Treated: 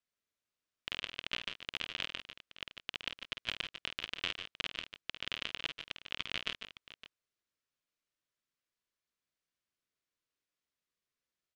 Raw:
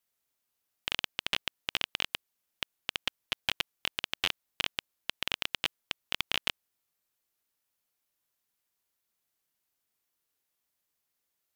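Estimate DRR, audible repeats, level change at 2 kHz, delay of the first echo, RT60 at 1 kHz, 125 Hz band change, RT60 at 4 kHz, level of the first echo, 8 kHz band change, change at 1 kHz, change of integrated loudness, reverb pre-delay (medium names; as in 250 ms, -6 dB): no reverb, 3, -5.0 dB, 50 ms, no reverb, -4.0 dB, no reverb, -8.5 dB, -10.5 dB, -7.0 dB, -5.5 dB, no reverb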